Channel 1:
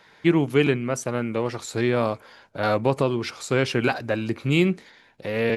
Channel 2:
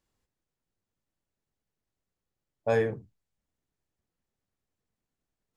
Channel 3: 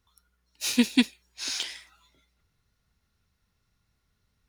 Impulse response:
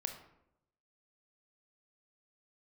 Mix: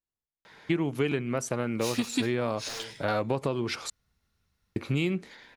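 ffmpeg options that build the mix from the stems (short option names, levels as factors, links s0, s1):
-filter_complex "[0:a]adelay=450,volume=1.06,asplit=3[s0][s1][s2];[s0]atrim=end=3.9,asetpts=PTS-STARTPTS,afade=t=out:st=3.896:d=0.004:c=hsin[s3];[s1]atrim=start=3.9:end=4.76,asetpts=PTS-STARTPTS,volume=0[s4];[s2]atrim=start=4.76,asetpts=PTS-STARTPTS,afade=t=in:d=0.004:c=hsin[s5];[s3][s4][s5]concat=n=3:v=0:a=1[s6];[1:a]aeval=exprs='(mod(8.41*val(0)+1,2)-1)/8.41':c=same,volume=0.141,asplit=2[s7][s8];[2:a]adelay=1200,volume=0.794,asplit=2[s9][s10];[s10]volume=0.141[s11];[s8]apad=whole_len=250870[s12];[s9][s12]sidechaincompress=threshold=0.00562:ratio=8:attack=7.7:release=1480[s13];[3:a]atrim=start_sample=2205[s14];[s11][s14]afir=irnorm=-1:irlink=0[s15];[s6][s7][s13][s15]amix=inputs=4:normalize=0,acompressor=threshold=0.0562:ratio=4"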